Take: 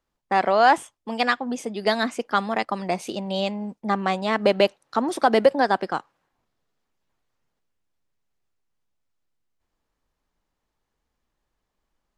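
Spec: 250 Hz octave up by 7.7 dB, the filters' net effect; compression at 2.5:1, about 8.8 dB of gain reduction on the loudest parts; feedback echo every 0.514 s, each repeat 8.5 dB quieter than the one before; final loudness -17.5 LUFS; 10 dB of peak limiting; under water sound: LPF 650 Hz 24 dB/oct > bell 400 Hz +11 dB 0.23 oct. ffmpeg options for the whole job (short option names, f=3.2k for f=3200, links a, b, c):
-af "equalizer=f=250:t=o:g=8.5,acompressor=threshold=-22dB:ratio=2.5,alimiter=limit=-18dB:level=0:latency=1,lowpass=f=650:w=0.5412,lowpass=f=650:w=1.3066,equalizer=f=400:t=o:w=0.23:g=11,aecho=1:1:514|1028|1542|2056:0.376|0.143|0.0543|0.0206,volume=10dB"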